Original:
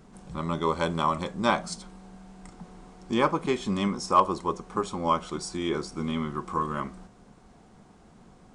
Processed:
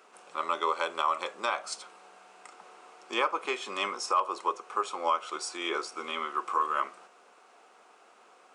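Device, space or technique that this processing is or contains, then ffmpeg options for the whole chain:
laptop speaker: -af "highpass=f=430:w=0.5412,highpass=f=430:w=1.3066,equalizer=f=1.3k:t=o:w=0.4:g=7.5,equalizer=f=2.6k:t=o:w=0.41:g=8.5,alimiter=limit=-16dB:level=0:latency=1:release=257"

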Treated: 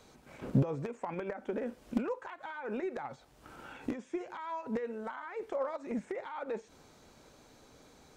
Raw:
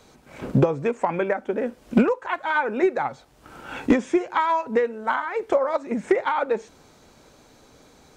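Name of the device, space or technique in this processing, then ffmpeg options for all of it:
de-esser from a sidechain: -filter_complex "[0:a]asplit=2[a][b];[b]highpass=5.4k,apad=whole_len=360092[c];[a][c]sidechaincompress=threshold=-57dB:ratio=10:attack=1.7:release=82,volume=-5.5dB"

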